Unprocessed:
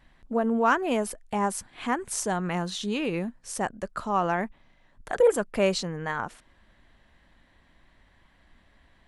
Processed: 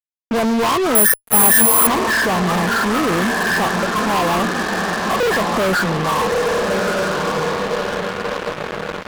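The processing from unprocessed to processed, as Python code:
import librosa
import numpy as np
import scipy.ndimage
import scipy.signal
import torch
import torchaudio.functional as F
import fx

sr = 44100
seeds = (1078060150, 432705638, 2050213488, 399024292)

p1 = fx.freq_compress(x, sr, knee_hz=1000.0, ratio=4.0)
p2 = scipy.signal.sosfilt(scipy.signal.butter(4, 62.0, 'highpass', fs=sr, output='sos'), p1)
p3 = p2 + fx.echo_diffused(p2, sr, ms=1239, feedback_pct=54, wet_db=-7, dry=0)
p4 = fx.fuzz(p3, sr, gain_db=38.0, gate_db=-39.0)
p5 = fx.resample_bad(p4, sr, factor=4, down='filtered', up='zero_stuff', at=(0.95, 1.87))
y = p5 * librosa.db_to_amplitude(-2.0)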